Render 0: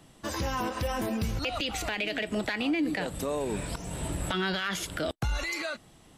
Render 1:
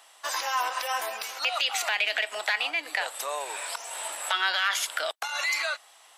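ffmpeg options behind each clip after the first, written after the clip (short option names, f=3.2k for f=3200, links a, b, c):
-af "highpass=f=740:w=0.5412,highpass=f=740:w=1.3066,volume=6.5dB"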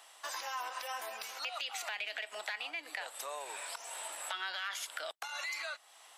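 -filter_complex "[0:a]acrossover=split=170[a][b];[b]acompressor=threshold=-42dB:ratio=2[c];[a][c]amix=inputs=2:normalize=0,volume=-2.5dB"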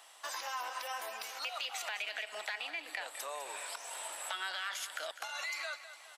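-af "aecho=1:1:203|406|609|812|1015:0.237|0.119|0.0593|0.0296|0.0148"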